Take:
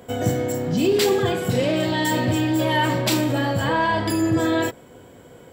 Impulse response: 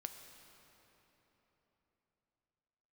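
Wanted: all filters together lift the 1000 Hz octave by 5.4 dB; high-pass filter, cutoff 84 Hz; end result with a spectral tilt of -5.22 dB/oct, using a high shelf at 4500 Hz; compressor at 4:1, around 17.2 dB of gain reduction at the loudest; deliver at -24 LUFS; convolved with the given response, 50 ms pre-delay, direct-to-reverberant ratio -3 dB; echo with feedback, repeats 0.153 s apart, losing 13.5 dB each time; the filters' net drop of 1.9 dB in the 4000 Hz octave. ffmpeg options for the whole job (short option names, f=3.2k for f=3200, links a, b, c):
-filter_complex "[0:a]highpass=84,equalizer=f=1k:t=o:g=6,equalizer=f=4k:t=o:g=-5,highshelf=f=4.5k:g=4,acompressor=threshold=-35dB:ratio=4,aecho=1:1:153|306:0.211|0.0444,asplit=2[a][b];[1:a]atrim=start_sample=2205,adelay=50[c];[b][c]afir=irnorm=-1:irlink=0,volume=6.5dB[d];[a][d]amix=inputs=2:normalize=0,volume=6.5dB"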